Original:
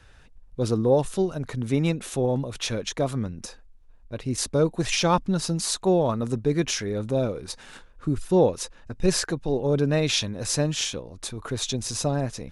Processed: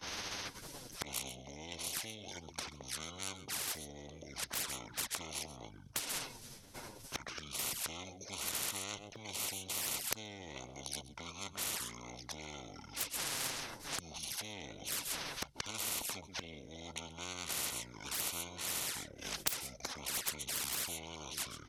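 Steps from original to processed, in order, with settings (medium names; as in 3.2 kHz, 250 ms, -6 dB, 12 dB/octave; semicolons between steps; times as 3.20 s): tracing distortion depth 0.17 ms; delay 75 ms -21 dB; speed mistake 78 rpm record played at 45 rpm; expander -45 dBFS; tone controls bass +6 dB, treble +7 dB; touch-sensitive flanger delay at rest 11.6 ms, full sweep at -19.5 dBFS; inverted gate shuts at -29 dBFS, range -31 dB; high-pass 110 Hz; treble shelf 4.2 kHz +10.5 dB; spectrum-flattening compressor 10:1; trim +10 dB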